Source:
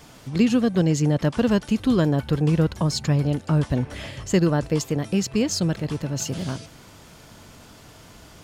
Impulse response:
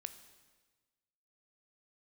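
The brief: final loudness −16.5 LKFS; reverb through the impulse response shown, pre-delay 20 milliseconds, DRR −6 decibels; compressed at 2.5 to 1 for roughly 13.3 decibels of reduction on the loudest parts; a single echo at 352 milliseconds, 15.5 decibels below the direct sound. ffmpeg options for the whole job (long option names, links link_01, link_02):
-filter_complex "[0:a]acompressor=threshold=-36dB:ratio=2.5,aecho=1:1:352:0.168,asplit=2[link_01][link_02];[1:a]atrim=start_sample=2205,adelay=20[link_03];[link_02][link_03]afir=irnorm=-1:irlink=0,volume=9.5dB[link_04];[link_01][link_04]amix=inputs=2:normalize=0,volume=10.5dB"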